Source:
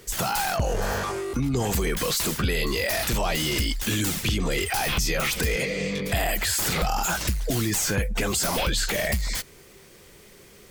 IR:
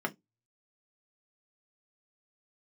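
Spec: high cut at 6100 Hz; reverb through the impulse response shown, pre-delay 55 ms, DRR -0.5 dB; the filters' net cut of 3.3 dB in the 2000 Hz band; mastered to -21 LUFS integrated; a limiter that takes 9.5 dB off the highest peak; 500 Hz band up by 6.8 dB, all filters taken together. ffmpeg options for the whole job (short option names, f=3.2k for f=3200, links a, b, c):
-filter_complex "[0:a]lowpass=6.1k,equalizer=f=500:t=o:g=8.5,equalizer=f=2k:t=o:g=-4.5,alimiter=limit=-20.5dB:level=0:latency=1,asplit=2[a][b];[1:a]atrim=start_sample=2205,adelay=55[c];[b][c]afir=irnorm=-1:irlink=0,volume=-5.5dB[d];[a][d]amix=inputs=2:normalize=0,volume=5dB"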